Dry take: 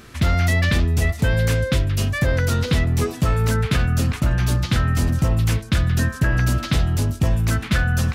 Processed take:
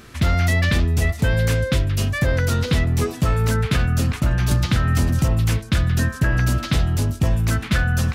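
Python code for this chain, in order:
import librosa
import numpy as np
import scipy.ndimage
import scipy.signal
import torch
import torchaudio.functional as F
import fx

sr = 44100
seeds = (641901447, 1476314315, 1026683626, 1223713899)

y = fx.band_squash(x, sr, depth_pct=100, at=(4.51, 5.28))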